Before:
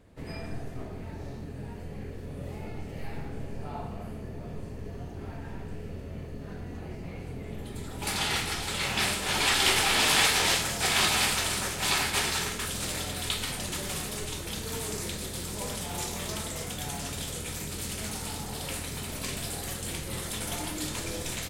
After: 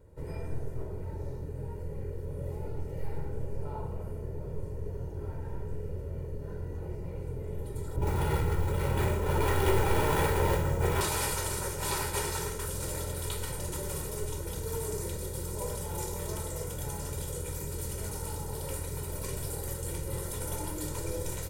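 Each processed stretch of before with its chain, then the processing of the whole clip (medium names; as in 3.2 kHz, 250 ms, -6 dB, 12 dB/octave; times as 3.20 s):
7.96–11.01 s: median filter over 9 samples + bass shelf 470 Hz +7.5 dB + flutter echo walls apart 10.3 m, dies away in 0.31 s
whole clip: peaking EQ 3.2 kHz -14.5 dB 2.4 oct; comb 2.1 ms, depth 75%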